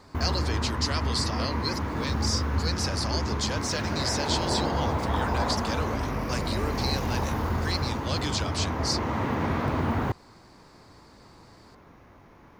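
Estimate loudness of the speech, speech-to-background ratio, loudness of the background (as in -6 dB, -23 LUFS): -32.0 LUFS, -3.0 dB, -29.0 LUFS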